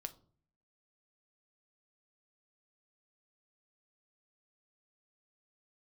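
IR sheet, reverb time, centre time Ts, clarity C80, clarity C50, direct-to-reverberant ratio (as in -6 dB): 0.50 s, 4 ms, 22.5 dB, 17.5 dB, 9.0 dB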